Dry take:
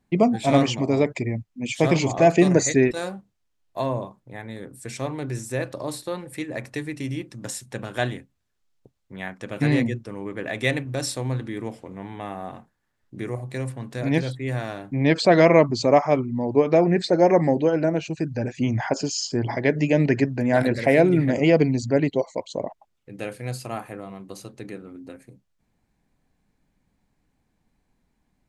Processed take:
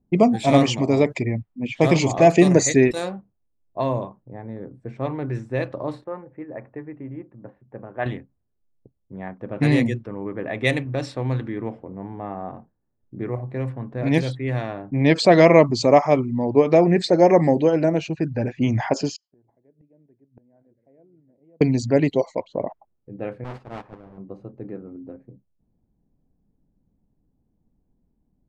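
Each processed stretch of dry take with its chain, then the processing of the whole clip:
0:06.04–0:08.06: low-pass filter 2,300 Hz 24 dB per octave + low-shelf EQ 410 Hz −10.5 dB
0:19.16–0:21.61: low-shelf EQ 250 Hz −8 dB + gate with flip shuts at −23 dBFS, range −36 dB
0:23.44–0:24.18: each half-wave held at its own peak + noise gate −30 dBFS, range −13 dB + every bin compressed towards the loudest bin 2 to 1
whole clip: dynamic equaliser 1,500 Hz, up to −6 dB, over −46 dBFS, Q 5.5; low-pass that shuts in the quiet parts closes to 440 Hz, open at −18 dBFS; level +2.5 dB

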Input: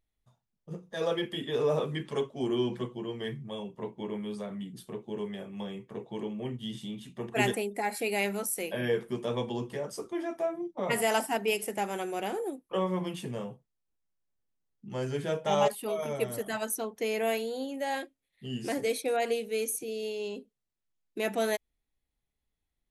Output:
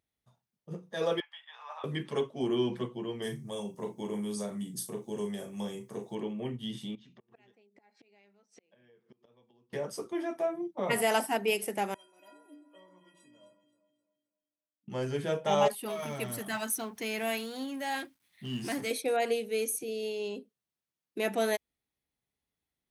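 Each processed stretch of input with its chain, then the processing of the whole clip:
0:01.20–0:01.84: Butterworth high-pass 800 Hz 48 dB per octave + head-to-tape spacing loss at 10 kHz 25 dB + expander for the loud parts, over −51 dBFS
0:03.22–0:06.15: high shelf with overshoot 4,400 Hz +13.5 dB, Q 1.5 + double-tracking delay 39 ms −8 dB
0:06.95–0:09.73: Butterworth low-pass 6,100 Hz + gate with flip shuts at −27 dBFS, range −33 dB + downward compressor 3 to 1, threshold −58 dBFS
0:11.94–0:14.88: stiff-string resonator 290 Hz, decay 0.64 s, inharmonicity 0.03 + delay that swaps between a low-pass and a high-pass 131 ms, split 1,700 Hz, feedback 61%, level −7.5 dB
0:15.85–0:18.91: mu-law and A-law mismatch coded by mu + parametric band 490 Hz −11 dB
whole clip: high-pass filter 98 Hz; notch filter 7,200 Hz, Q 10

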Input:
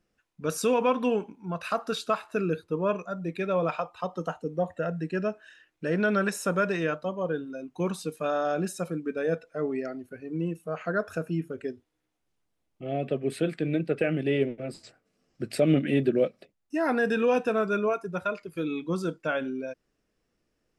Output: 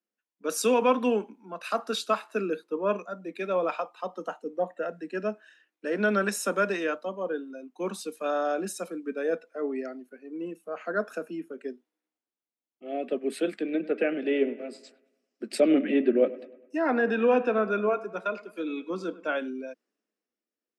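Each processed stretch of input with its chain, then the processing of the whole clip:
0:13.57–0:19.36: treble cut that deepens with the level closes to 2,900 Hz, closed at −21 dBFS + bucket-brigade delay 102 ms, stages 2,048, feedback 59%, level −16.5 dB
whole clip: Butterworth high-pass 200 Hz 72 dB per octave; multiband upward and downward expander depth 40%

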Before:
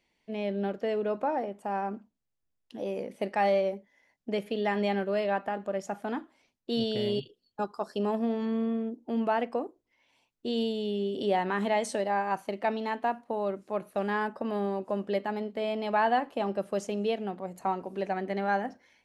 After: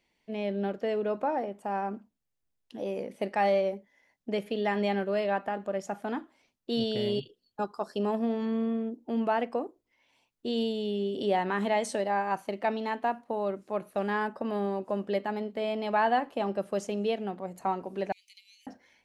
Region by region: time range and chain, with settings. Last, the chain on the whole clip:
0:18.12–0:18.67: high shelf with overshoot 4,000 Hz +7.5 dB, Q 1.5 + downward compressor 3 to 1, threshold −33 dBFS + Butterworth high-pass 2,300 Hz 96 dB per octave
whole clip: no processing

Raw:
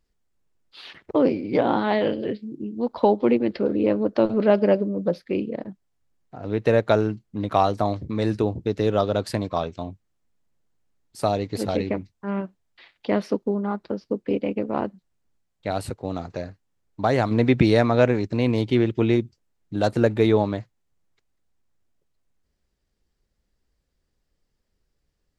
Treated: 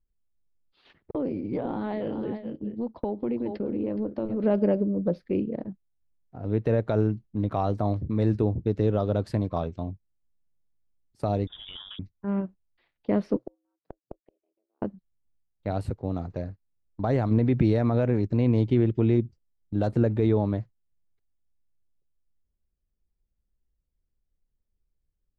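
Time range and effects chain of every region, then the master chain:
0:01.11–0:04.44: single-tap delay 420 ms −12.5 dB + downward expander −29 dBFS + downward compressor 3 to 1, threshold −25 dBFS
0:11.47–0:11.99: downward compressor 2 to 1, threshold −32 dBFS + voice inversion scrambler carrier 3,600 Hz
0:13.36–0:14.82: frequency shifter +120 Hz + gate with flip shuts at −20 dBFS, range −40 dB
whole clip: noise gate −40 dBFS, range −11 dB; brickwall limiter −11 dBFS; spectral tilt −3 dB per octave; level −6.5 dB

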